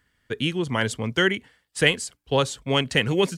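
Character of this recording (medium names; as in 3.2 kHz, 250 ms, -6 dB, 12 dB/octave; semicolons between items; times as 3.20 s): noise floor -76 dBFS; spectral tilt -4.0 dB/octave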